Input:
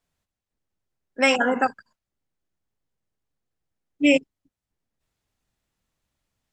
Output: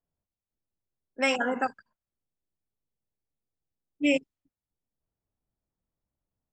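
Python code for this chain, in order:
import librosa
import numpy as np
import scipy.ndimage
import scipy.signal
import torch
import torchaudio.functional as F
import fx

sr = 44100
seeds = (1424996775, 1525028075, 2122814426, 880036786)

y = fx.env_lowpass(x, sr, base_hz=840.0, full_db=-20.0)
y = y * librosa.db_to_amplitude(-6.5)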